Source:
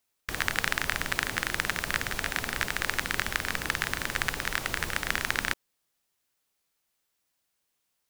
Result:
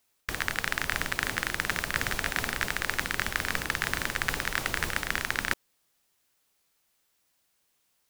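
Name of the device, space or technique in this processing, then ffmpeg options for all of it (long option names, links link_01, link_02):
compression on the reversed sound: -af "areverse,acompressor=threshold=-29dB:ratio=6,areverse,volume=5.5dB"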